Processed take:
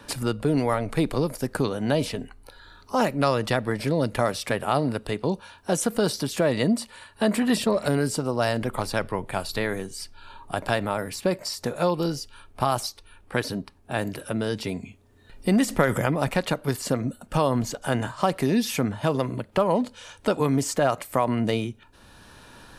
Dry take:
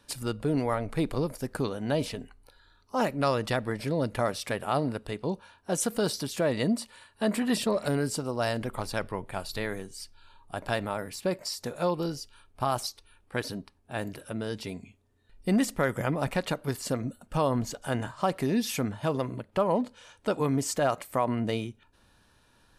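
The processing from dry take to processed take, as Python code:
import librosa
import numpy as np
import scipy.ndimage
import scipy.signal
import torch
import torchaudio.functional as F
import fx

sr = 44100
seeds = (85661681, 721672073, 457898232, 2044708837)

y = fx.transient(x, sr, attack_db=5, sustain_db=9, at=(15.65, 16.07))
y = fx.band_squash(y, sr, depth_pct=40)
y = y * librosa.db_to_amplitude(4.5)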